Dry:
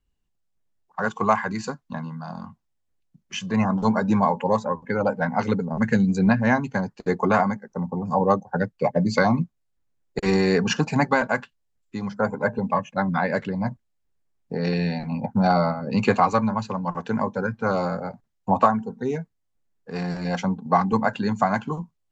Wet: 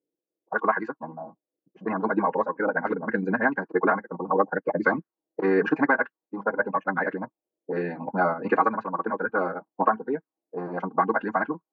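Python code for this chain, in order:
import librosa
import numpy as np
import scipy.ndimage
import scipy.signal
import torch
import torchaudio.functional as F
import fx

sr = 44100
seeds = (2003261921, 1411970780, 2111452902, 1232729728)

y = fx.highpass_res(x, sr, hz=320.0, q=3.7)
y = y + 0.33 * np.pad(y, (int(6.3 * sr / 1000.0), 0))[:len(y)]
y = fx.stretch_vocoder(y, sr, factor=0.53)
y = fx.envelope_lowpass(y, sr, base_hz=520.0, top_hz=1600.0, q=3.3, full_db=-20.5, direction='up')
y = F.gain(torch.from_numpy(y), -6.0).numpy()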